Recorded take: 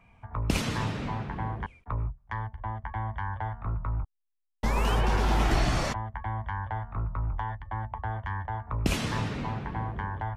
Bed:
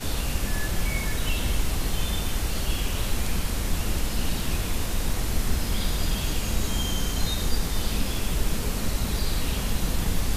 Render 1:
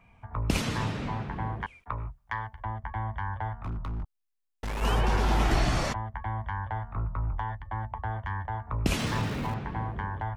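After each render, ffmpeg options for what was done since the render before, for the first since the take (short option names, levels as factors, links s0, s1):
-filter_complex "[0:a]asettb=1/sr,asplit=3[s0][s1][s2];[s0]atrim=end=1.614[s3];[s1]atrim=start=1.61:end=2.65,asetpts=PTS-STARTPTS,afade=t=in:d=0.004:c=qsin,afade=t=out:st=1.036:d=0.004:c=qsin,tiltshelf=f=660:g=-5.5[s4];[s2]atrim=start=2.646[s5];[s3][s4]acrossfade=d=0.004:c1=hsin:c2=qsin[s6];[s6][s5]acrossfade=d=0.004:c1=qsin:c2=hsin,asplit=3[s7][s8][s9];[s7]afade=t=out:st=3.57:d=0.02[s10];[s8]asoftclip=type=hard:threshold=0.0299,afade=t=in:st=3.57:d=0.02,afade=t=out:st=4.81:d=0.02[s11];[s9]afade=t=in:st=4.81:d=0.02[s12];[s10][s11][s12]amix=inputs=3:normalize=0,asettb=1/sr,asplit=3[s13][s14][s15];[s13]atrim=end=8.994[s16];[s14]atrim=start=8.99:end=9.54,asetpts=PTS-STARTPTS,afade=t=in:d=0.004:c=qsin,afade=t=out:st=0.546:d=0.004:c=qsin,aeval=exprs='val(0)+0.5*0.00944*sgn(val(0))':c=same[s17];[s15]atrim=start=9.536[s18];[s16][s17]acrossfade=d=0.004:c1=hsin:c2=qsin[s19];[s19][s18]acrossfade=d=0.004:c1=qsin:c2=hsin"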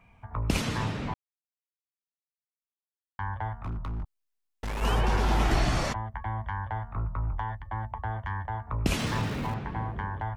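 -filter_complex "[0:a]asplit=3[s0][s1][s2];[s0]atrim=end=1.14,asetpts=PTS-STARTPTS,afade=t=out:st=1.136:d=0.004:c=hsin[s3];[s1]atrim=start=1.14:end=3.19,asetpts=PTS-STARTPTS,volume=0[s4];[s2]atrim=start=3.19,asetpts=PTS-STARTPTS,afade=t=in:d=0.004:c=hsin[s5];[s3][s4][s5]concat=n=3:v=0:a=1"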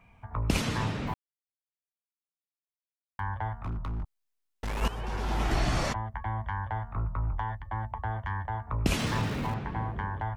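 -filter_complex "[0:a]asettb=1/sr,asplit=3[s0][s1][s2];[s0]atrim=end=1.074[s3];[s1]atrim=start=1.07:end=3.2,asetpts=PTS-STARTPTS,afade=t=in:d=0.004:c=qsin,afade=t=out:st=2.126:d=0.004:c=qsin,acrusher=bits=8:mix=0:aa=0.5[s4];[s2]atrim=start=3.196[s5];[s3][s4]acrossfade=d=0.004:c1=hsin:c2=qsin[s6];[s6][s5]acrossfade=d=0.004:c1=qsin:c2=hsin,asplit=2[s7][s8];[s7]atrim=end=4.88,asetpts=PTS-STARTPTS,afade=t=out:st=4.876:d=0.004:c=hsin:silence=0.188365[s9];[s8]atrim=start=4.88,asetpts=PTS-STARTPTS,afade=t=in:d=1.01:silence=0.188365[s10];[s9][s10]concat=n=2:v=0:a=1"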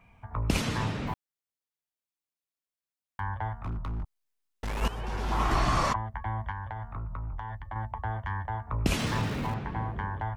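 -filter_complex "[0:a]asettb=1/sr,asplit=3[s0][s1][s2];[s0]atrim=end=5.324[s3];[s1]atrim=start=5.32:end=5.96,asetpts=PTS-STARTPTS,afade=t=in:d=0.004:c=qsin,afade=t=out:st=0.636:d=0.004:c=qsin,equalizer=f=1100:t=o:w=0.43:g=12.5[s4];[s2]atrim=start=5.956[s5];[s3][s4]acrossfade=d=0.004:c1=hsin:c2=qsin[s6];[s6][s5]acrossfade=d=0.004:c1=qsin:c2=hsin,asettb=1/sr,asplit=3[s7][s8][s9];[s7]atrim=end=6.514[s10];[s8]atrim=start=6.51:end=7.76,asetpts=PTS-STARTPTS,afade=t=in:d=0.004:c=qsin,afade=t=out:st=1.246:d=0.004:c=qsin,acompressor=threshold=0.0251:ratio=6:attack=3.2:release=140:knee=1:detection=peak[s11];[s9]atrim=start=7.756[s12];[s10][s11]acrossfade=d=0.004:c1=hsin:c2=qsin[s13];[s13][s12]acrossfade=d=0.004:c1=qsin:c2=hsin"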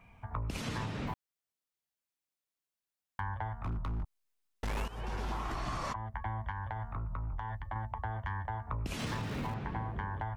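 -af "alimiter=limit=0.0891:level=0:latency=1:release=410,acompressor=threshold=0.0224:ratio=6"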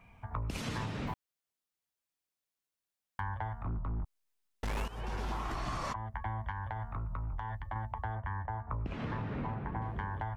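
-filter_complex "[0:a]asettb=1/sr,asplit=3[s0][s1][s2];[s0]atrim=end=3.634[s3];[s1]atrim=start=3.63:end=4.03,asetpts=PTS-STARTPTS,afade=t=in:d=0.004:c=qsin,afade=t=out:st=0.396:d=0.004:c=qsin,lowpass=1300[s4];[s2]atrim=start=4.026[s5];[s3][s4]acrossfade=d=0.004:c1=hsin:c2=qsin[s6];[s6][s5]acrossfade=d=0.004:c1=qsin:c2=hsin,asettb=1/sr,asplit=3[s7][s8][s9];[s7]atrim=end=8.154[s10];[s8]atrim=start=8.15:end=9.82,asetpts=PTS-STARTPTS,afade=t=in:d=0.004:c=qsin,afade=t=out:st=1.666:d=0.004:c=qsin,lowpass=1800[s11];[s9]atrim=start=9.816[s12];[s10][s11]acrossfade=d=0.004:c1=hsin:c2=qsin[s13];[s13][s12]acrossfade=d=0.004:c1=qsin:c2=hsin"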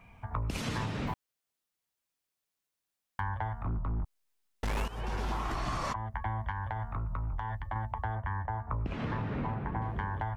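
-af "volume=1.41"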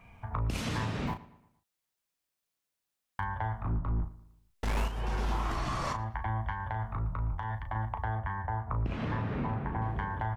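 -filter_complex "[0:a]asplit=2[s0][s1];[s1]adelay=36,volume=0.398[s2];[s0][s2]amix=inputs=2:normalize=0,asplit=2[s3][s4];[s4]adelay=115,lowpass=f=4100:p=1,volume=0.126,asplit=2[s5][s6];[s6]adelay=115,lowpass=f=4100:p=1,volume=0.44,asplit=2[s7][s8];[s8]adelay=115,lowpass=f=4100:p=1,volume=0.44,asplit=2[s9][s10];[s10]adelay=115,lowpass=f=4100:p=1,volume=0.44[s11];[s3][s5][s7][s9][s11]amix=inputs=5:normalize=0"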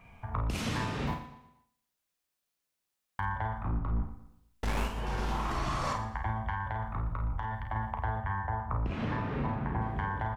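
-filter_complex "[0:a]asplit=2[s0][s1];[s1]adelay=50,volume=0.447[s2];[s0][s2]amix=inputs=2:normalize=0,aecho=1:1:119|238|357|476:0.2|0.0778|0.0303|0.0118"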